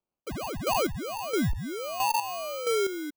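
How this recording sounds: aliases and images of a low sample rate 1.8 kHz, jitter 0%; chopped level 1.5 Hz, depth 65%, duty 30%

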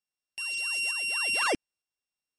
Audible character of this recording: a buzz of ramps at a fixed pitch in blocks of 16 samples; tremolo saw up 1.1 Hz, depth 35%; MP3

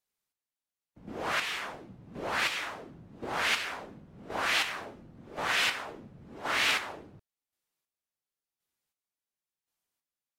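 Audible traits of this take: chopped level 0.93 Hz, depth 60%, duty 30%; AAC

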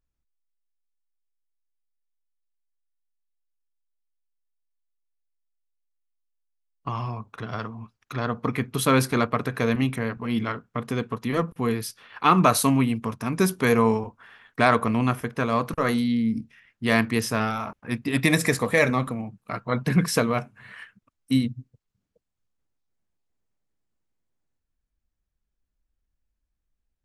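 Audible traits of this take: noise floor -80 dBFS; spectral tilt -5.5 dB/octave

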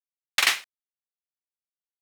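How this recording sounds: a quantiser's noise floor 10-bit, dither none

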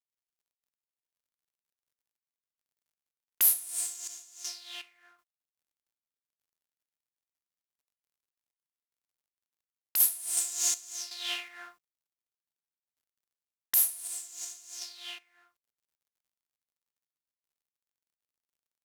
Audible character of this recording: a quantiser's noise floor 12-bit, dither none; random-step tremolo 2.7 Hz, depth 85%

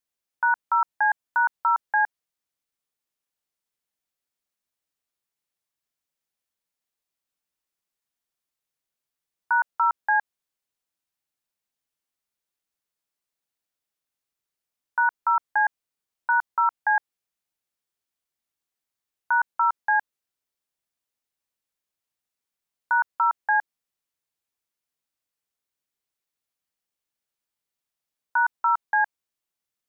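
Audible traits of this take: noise floor -87 dBFS; spectral tilt +13.0 dB/octave

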